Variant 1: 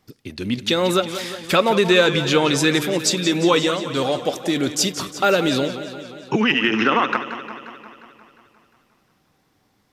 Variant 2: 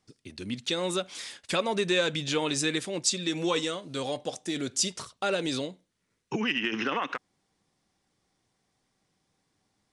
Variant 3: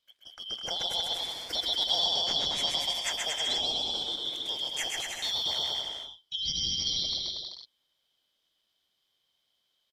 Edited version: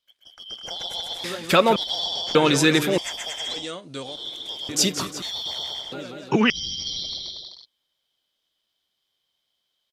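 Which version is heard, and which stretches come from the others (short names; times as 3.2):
3
1.24–1.76 from 1
2.35–2.98 from 1
3.61–4.09 from 2, crossfade 0.24 s
4.69–5.22 from 1
5.92–6.5 from 1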